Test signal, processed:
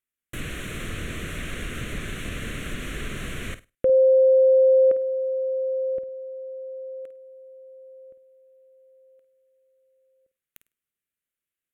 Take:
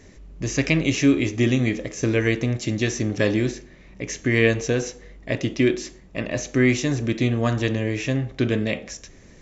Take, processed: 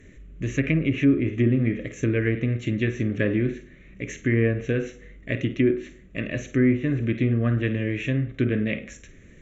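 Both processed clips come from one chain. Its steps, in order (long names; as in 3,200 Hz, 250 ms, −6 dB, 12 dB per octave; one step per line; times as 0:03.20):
phaser with its sweep stopped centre 2,100 Hz, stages 4
flutter between parallel walls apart 8.8 metres, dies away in 0.24 s
treble cut that deepens with the level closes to 1,200 Hz, closed at −16.5 dBFS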